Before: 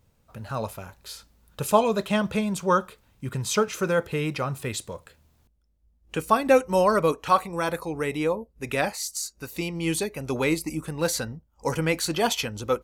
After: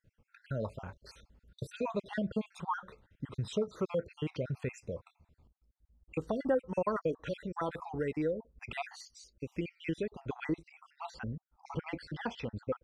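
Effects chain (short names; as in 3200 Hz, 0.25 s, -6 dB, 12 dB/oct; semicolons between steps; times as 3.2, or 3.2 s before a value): random spectral dropouts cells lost 54%; compressor 2:1, threshold -33 dBFS, peak gain reduction 10.5 dB; tape spacing loss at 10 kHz 24 dB, from 9.01 s at 10 kHz 31 dB, from 10.54 s at 10 kHz 39 dB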